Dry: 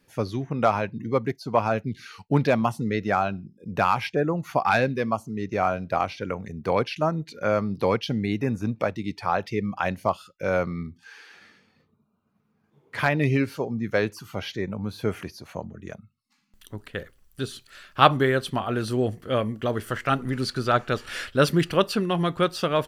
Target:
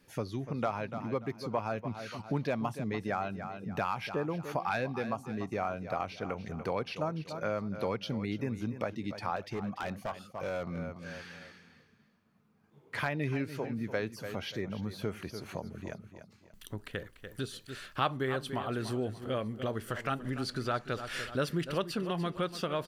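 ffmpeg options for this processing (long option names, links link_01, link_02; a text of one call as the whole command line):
ffmpeg -i in.wav -filter_complex "[0:a]aecho=1:1:291|582|873:0.2|0.0658|0.0217,acompressor=threshold=-38dB:ratio=2,asettb=1/sr,asplit=3[link_01][link_02][link_03];[link_01]atrim=end=9.364[link_04];[link_02]atrim=start=9.36:end=10.79,asetpts=PTS-STARTPTS,afade=type=in:duration=0.004:curve=qsin,afade=type=out:start_time=1.426:duration=0.004:curve=qsin,asoftclip=type=hard:threshold=-30.5dB[link_05];[link_03]atrim=start=10.786[link_06];[link_04][link_05]acrossfade=duration=0.004:curve1=hsin:curve2=qsin[link_07];[link_07][link_06]acrossfade=duration=0.004:curve1=qsin:curve2=hsin" out.wav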